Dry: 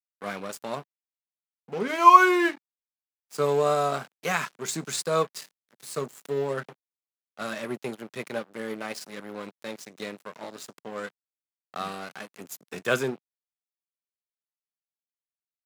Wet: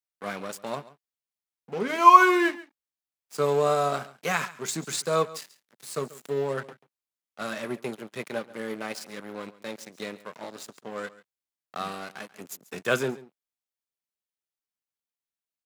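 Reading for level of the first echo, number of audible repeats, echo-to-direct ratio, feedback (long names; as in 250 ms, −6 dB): −18.5 dB, 1, −18.5 dB, repeats not evenly spaced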